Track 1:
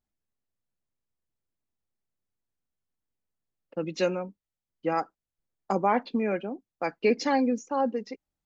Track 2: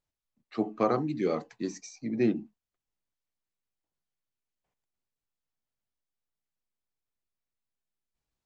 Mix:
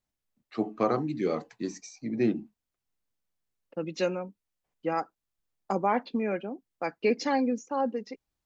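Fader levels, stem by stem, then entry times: −2.0, 0.0 decibels; 0.00, 0.00 seconds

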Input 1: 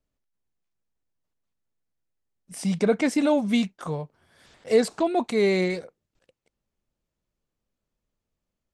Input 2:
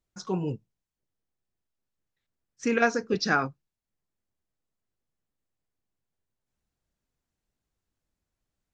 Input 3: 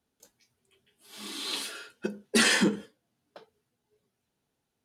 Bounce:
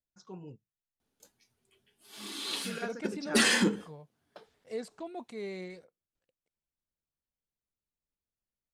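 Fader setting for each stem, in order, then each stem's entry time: −18.0, −16.5, −2.0 decibels; 0.00, 0.00, 1.00 seconds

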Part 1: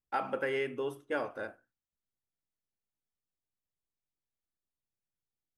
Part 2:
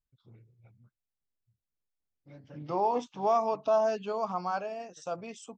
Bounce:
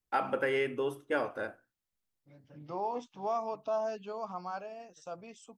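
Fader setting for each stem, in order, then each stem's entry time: +2.5, −7.0 decibels; 0.00, 0.00 seconds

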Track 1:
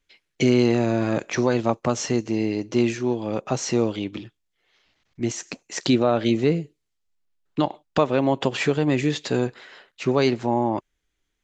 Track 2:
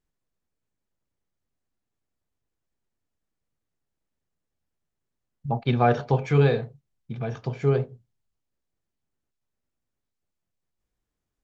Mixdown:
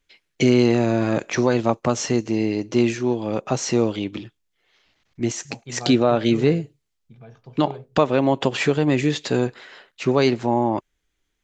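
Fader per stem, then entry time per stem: +2.0, −14.0 decibels; 0.00, 0.00 seconds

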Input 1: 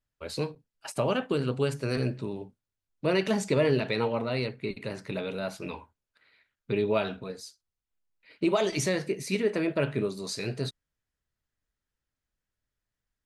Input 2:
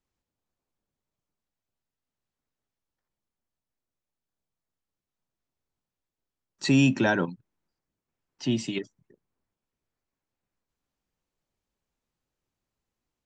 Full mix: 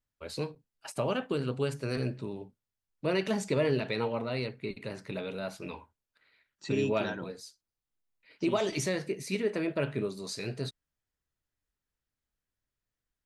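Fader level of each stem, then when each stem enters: −3.5, −14.0 decibels; 0.00, 0.00 seconds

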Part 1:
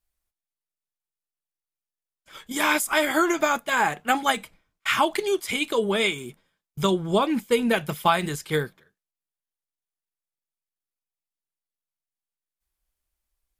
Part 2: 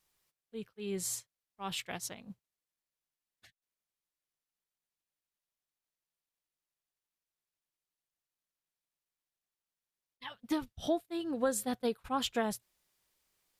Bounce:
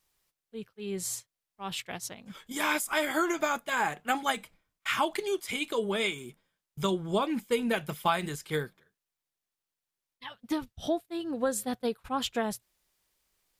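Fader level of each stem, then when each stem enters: −6.5, +2.0 decibels; 0.00, 0.00 seconds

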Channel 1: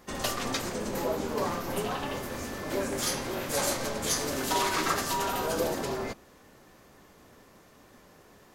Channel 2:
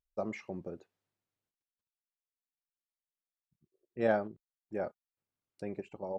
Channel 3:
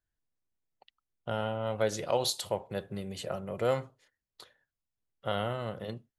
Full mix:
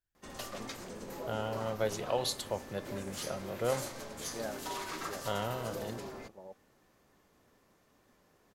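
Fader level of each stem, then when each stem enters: −12.0, −11.5, −3.5 decibels; 0.15, 0.35, 0.00 seconds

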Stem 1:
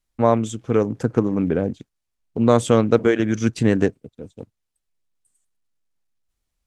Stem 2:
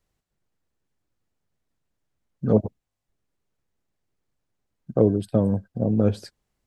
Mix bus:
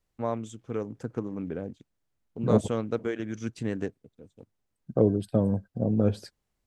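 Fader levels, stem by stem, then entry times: −13.5, −3.5 decibels; 0.00, 0.00 seconds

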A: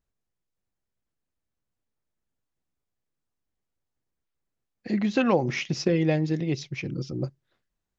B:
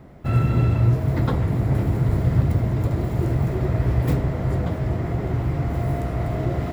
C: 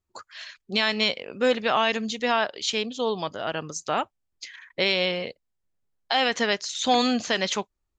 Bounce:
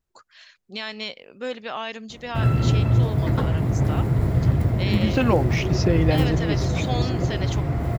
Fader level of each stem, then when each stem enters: +1.5, −0.5, −8.5 decibels; 0.00, 2.10, 0.00 seconds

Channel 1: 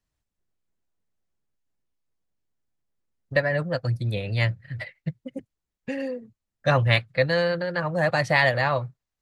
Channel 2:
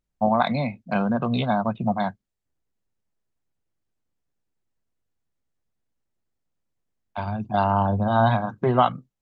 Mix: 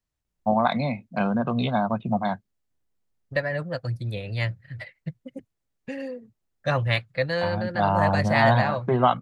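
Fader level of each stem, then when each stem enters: −3.5, −1.0 decibels; 0.00, 0.25 seconds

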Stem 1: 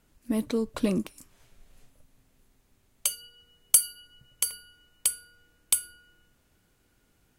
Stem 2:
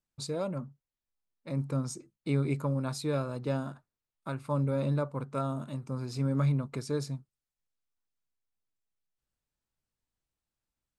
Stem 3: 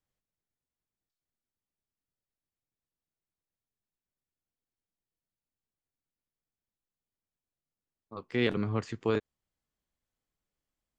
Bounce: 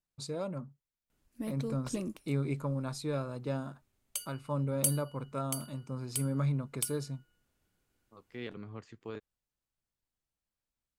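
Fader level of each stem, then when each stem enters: −10.5, −3.5, −14.0 decibels; 1.10, 0.00, 0.00 seconds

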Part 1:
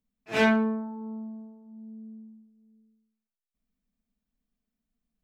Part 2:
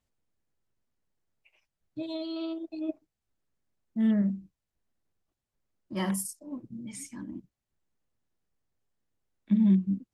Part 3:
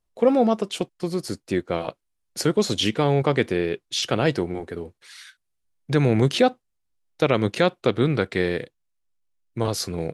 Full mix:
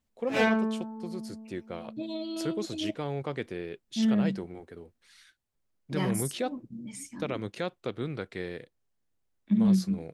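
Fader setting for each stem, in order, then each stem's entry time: −2.5, −0.5, −13.5 decibels; 0.00, 0.00, 0.00 seconds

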